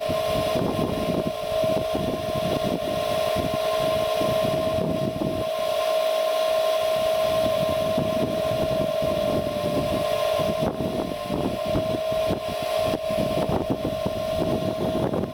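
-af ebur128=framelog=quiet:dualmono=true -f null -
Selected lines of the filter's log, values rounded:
Integrated loudness:
  I:         -21.4 LUFS
  Threshold: -31.4 LUFS
Loudness range:
  LRA:         2.2 LU
  Threshold: -41.3 LUFS
  LRA low:   -22.4 LUFS
  LRA high:  -20.1 LUFS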